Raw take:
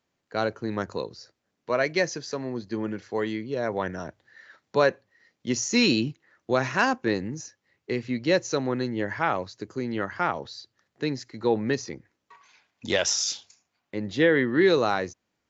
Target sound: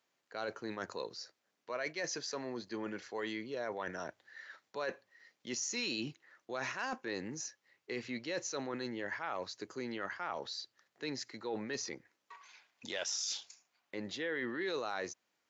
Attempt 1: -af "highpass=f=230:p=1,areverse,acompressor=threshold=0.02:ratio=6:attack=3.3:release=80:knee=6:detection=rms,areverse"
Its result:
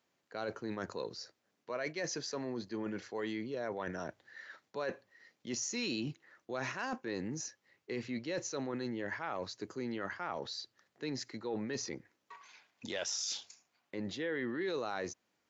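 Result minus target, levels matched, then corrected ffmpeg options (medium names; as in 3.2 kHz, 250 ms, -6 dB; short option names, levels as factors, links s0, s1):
250 Hz band +2.5 dB
-af "highpass=f=670:p=1,areverse,acompressor=threshold=0.02:ratio=6:attack=3.3:release=80:knee=6:detection=rms,areverse"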